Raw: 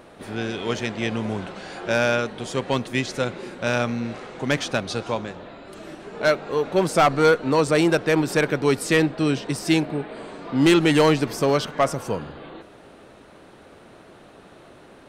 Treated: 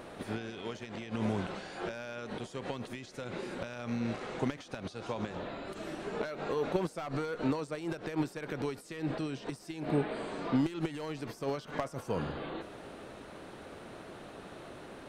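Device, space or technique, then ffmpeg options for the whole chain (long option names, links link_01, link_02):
de-esser from a sidechain: -filter_complex "[0:a]asplit=2[link_01][link_02];[link_02]highpass=4600,apad=whole_len=665436[link_03];[link_01][link_03]sidechaincompress=threshold=-53dB:ratio=12:attack=2.6:release=64"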